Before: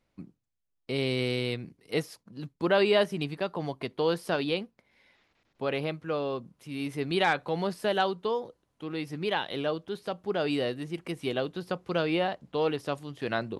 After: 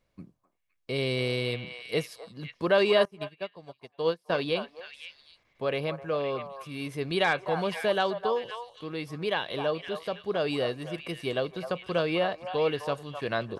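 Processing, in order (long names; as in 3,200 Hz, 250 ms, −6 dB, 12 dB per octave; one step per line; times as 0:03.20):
comb filter 1.8 ms, depth 32%
on a send: echo through a band-pass that steps 258 ms, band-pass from 910 Hz, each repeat 1.4 octaves, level −4.5 dB
0:03.05–0:04.30: on the sum: expander for the loud parts 2.5 to 1, over −40 dBFS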